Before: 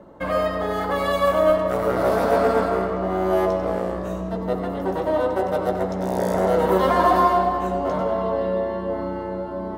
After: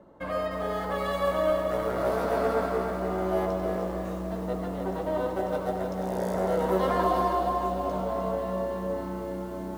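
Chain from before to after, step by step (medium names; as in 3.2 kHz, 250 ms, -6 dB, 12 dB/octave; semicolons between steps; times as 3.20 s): 7.04–8.06 s: peaking EQ 1.8 kHz -9 dB 0.62 oct; bit-crushed delay 306 ms, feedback 55%, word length 7-bit, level -6.5 dB; trim -8 dB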